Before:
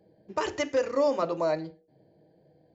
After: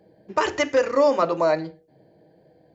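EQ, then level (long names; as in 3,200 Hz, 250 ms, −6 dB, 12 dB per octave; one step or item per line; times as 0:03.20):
parametric band 1,500 Hz +4.5 dB 1.9 octaves
mains-hum notches 50/100/150 Hz
+5.0 dB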